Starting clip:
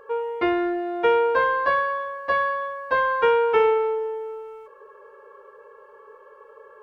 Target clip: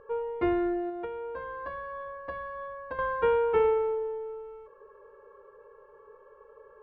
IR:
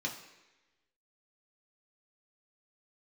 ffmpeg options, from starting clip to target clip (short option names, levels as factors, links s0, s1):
-filter_complex "[0:a]aemphasis=mode=reproduction:type=riaa,asettb=1/sr,asplit=3[s0][s1][s2];[s0]atrim=end=0.894[s3];[s1]atrim=start=0.89:end=2.99,asetpts=PTS-STARTPTS,afade=t=in:d=0.004:c=qsin,afade=t=out:st=2.096:d=0.004:c=qsin,acompressor=threshold=0.0501:ratio=16[s4];[s2]atrim=start=2.986[s5];[s3][s4]acrossfade=d=0.004:c1=hsin:c2=qsin[s6];[s6][s5]acrossfade=d=0.004:c1=qsin:c2=hsin,volume=0.398"